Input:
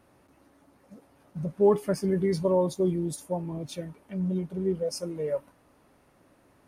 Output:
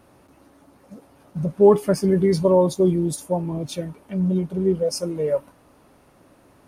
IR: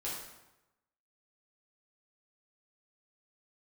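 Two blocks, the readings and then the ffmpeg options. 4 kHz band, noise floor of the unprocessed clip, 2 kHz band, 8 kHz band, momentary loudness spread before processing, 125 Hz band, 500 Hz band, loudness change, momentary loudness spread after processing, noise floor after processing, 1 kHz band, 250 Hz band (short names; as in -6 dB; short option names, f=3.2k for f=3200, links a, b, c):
+7.5 dB, -63 dBFS, +5.5 dB, +7.5 dB, 13 LU, +7.5 dB, +7.5 dB, +7.5 dB, 13 LU, -55 dBFS, +7.5 dB, +7.5 dB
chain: -af "equalizer=f=1.9k:t=o:w=0.58:g=-3,volume=7.5dB"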